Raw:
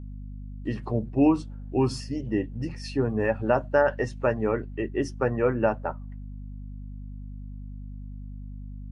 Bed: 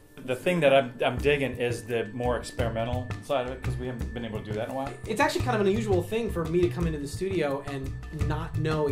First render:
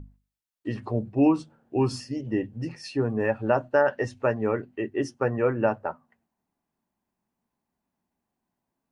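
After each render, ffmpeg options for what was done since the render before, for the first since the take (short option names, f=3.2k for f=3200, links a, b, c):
-af "bandreject=f=50:t=h:w=6,bandreject=f=100:t=h:w=6,bandreject=f=150:t=h:w=6,bandreject=f=200:t=h:w=6,bandreject=f=250:t=h:w=6"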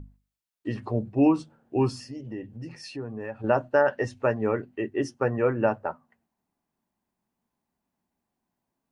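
-filter_complex "[0:a]asettb=1/sr,asplit=3[a][b][c];[a]atrim=end=1.904[d];[b]atrim=start=1.9:end=3.44,asetpts=PTS-STARTPTS,afade=t=in:d=0.004:c=qsin,afade=t=out:st=1.536:d=0.004:c=qsin,acompressor=threshold=-39dB:ratio=2:attack=3.2:release=140:knee=1:detection=peak[e];[c]atrim=start=3.436[f];[d][e]acrossfade=d=0.004:c1=hsin:c2=qsin[g];[g][f]acrossfade=d=0.004:c1=qsin:c2=hsin"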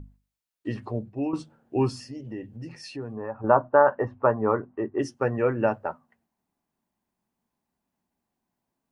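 -filter_complex "[0:a]asplit=3[a][b][c];[a]afade=t=out:st=3.15:d=0.02[d];[b]lowpass=f=1.1k:t=q:w=3.4,afade=t=in:st=3.15:d=0.02,afade=t=out:st=4.98:d=0.02[e];[c]afade=t=in:st=4.98:d=0.02[f];[d][e][f]amix=inputs=3:normalize=0,asplit=2[g][h];[g]atrim=end=1.33,asetpts=PTS-STARTPTS,afade=t=out:st=0.7:d=0.63:silence=0.251189[i];[h]atrim=start=1.33,asetpts=PTS-STARTPTS,afade=t=in:d=0.004:c=hsin:silence=0.251189[j];[i][j]concat=n=2:v=0:a=1"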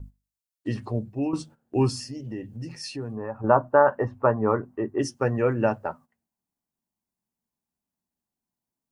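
-af "agate=range=-11dB:threshold=-47dB:ratio=16:detection=peak,bass=f=250:g=4,treble=f=4k:g=9"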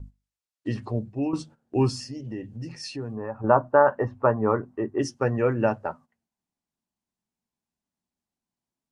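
-af "lowpass=8.3k"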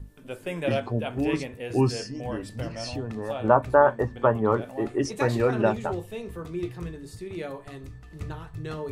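-filter_complex "[1:a]volume=-7.5dB[a];[0:a][a]amix=inputs=2:normalize=0"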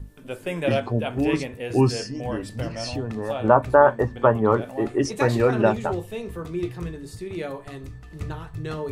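-af "volume=3.5dB,alimiter=limit=-2dB:level=0:latency=1"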